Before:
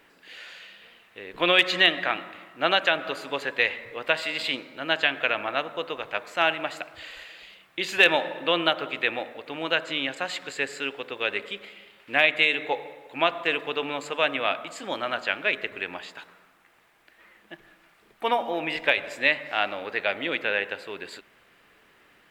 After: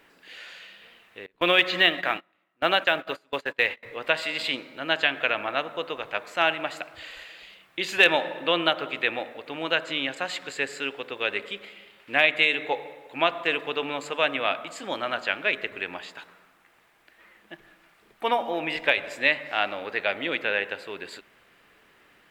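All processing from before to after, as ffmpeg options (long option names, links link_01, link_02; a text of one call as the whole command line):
ffmpeg -i in.wav -filter_complex "[0:a]asettb=1/sr,asplit=3[link_01][link_02][link_03];[link_01]atrim=end=1.264[link_04];[link_02]atrim=start=1.26:end=3.83,asetpts=PTS-STARTPTS,afade=type=in:duration=0.004:curve=qsin,afade=type=out:start_time=2.566:duration=0.004:curve=qsin,agate=range=-26dB:threshold=-34dB:ratio=16:release=100:detection=peak,acrossover=split=4600[link_05][link_06];[link_06]acompressor=threshold=-45dB:ratio=4:attack=1:release=60[link_07];[link_05][link_07]amix=inputs=2:normalize=0,acrusher=bits=9:mode=log:mix=0:aa=0.000001[link_08];[link_03]atrim=start=3.826[link_09];[link_04][link_08]acrossfade=duration=0.004:curve1=hsin:curve2=qsin[link_10];[link_10][link_09]acrossfade=duration=0.004:curve1=qsin:curve2=hsin" out.wav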